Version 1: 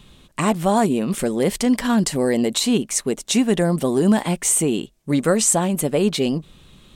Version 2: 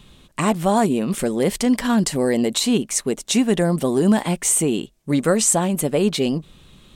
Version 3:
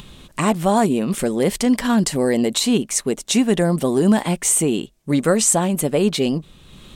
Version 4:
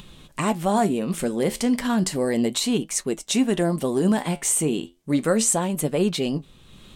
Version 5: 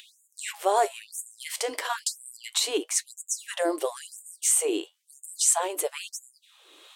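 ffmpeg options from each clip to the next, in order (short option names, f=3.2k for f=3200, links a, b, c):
-af anull
-af "acompressor=mode=upward:threshold=-35dB:ratio=2.5,volume=1dB"
-af "flanger=delay=5.3:depth=8.4:regen=72:speed=0.33:shape=triangular"
-af "afftfilt=real='re*gte(b*sr/1024,270*pow(6800/270,0.5+0.5*sin(2*PI*1*pts/sr)))':imag='im*gte(b*sr/1024,270*pow(6800/270,0.5+0.5*sin(2*PI*1*pts/sr)))':win_size=1024:overlap=0.75"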